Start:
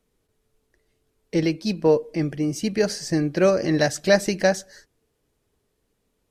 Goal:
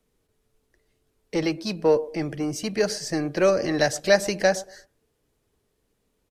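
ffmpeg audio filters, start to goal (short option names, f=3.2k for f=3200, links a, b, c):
-filter_complex "[0:a]acrossover=split=350|1500[a][b][c];[a]asoftclip=type=tanh:threshold=-29.5dB[d];[b]asplit=2[e][f];[f]adelay=115,lowpass=f=900:p=1,volume=-14dB,asplit=2[g][h];[h]adelay=115,lowpass=f=900:p=1,volume=0.29,asplit=2[i][j];[j]adelay=115,lowpass=f=900:p=1,volume=0.29[k];[e][g][i][k]amix=inputs=4:normalize=0[l];[d][l][c]amix=inputs=3:normalize=0"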